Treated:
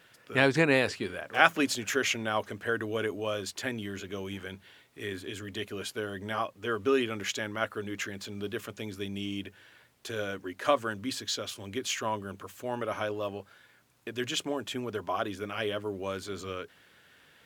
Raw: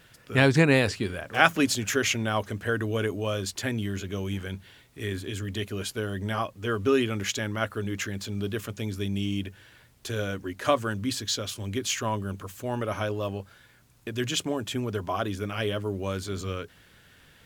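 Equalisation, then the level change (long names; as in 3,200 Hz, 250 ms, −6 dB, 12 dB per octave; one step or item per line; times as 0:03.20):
high-pass filter 170 Hz 6 dB per octave
bass and treble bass −5 dB, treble −4 dB
−1.5 dB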